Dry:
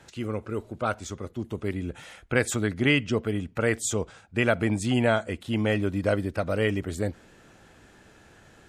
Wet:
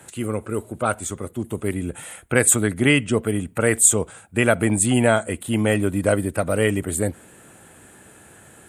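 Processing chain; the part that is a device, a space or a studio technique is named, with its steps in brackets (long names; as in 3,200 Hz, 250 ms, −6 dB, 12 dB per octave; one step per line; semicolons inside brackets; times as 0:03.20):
budget condenser microphone (high-pass filter 77 Hz; high shelf with overshoot 7,000 Hz +10 dB, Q 3)
level +5.5 dB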